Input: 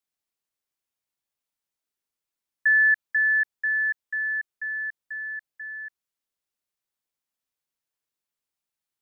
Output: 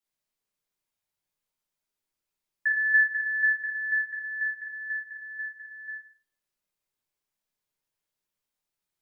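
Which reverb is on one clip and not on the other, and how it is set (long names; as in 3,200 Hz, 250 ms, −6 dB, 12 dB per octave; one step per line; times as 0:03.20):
rectangular room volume 100 cubic metres, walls mixed, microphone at 1.3 metres
level −4 dB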